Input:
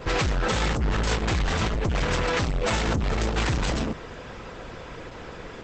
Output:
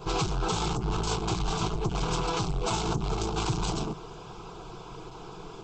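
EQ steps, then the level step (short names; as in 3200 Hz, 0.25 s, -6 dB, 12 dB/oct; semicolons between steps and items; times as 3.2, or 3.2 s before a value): fixed phaser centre 370 Hz, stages 8; 0.0 dB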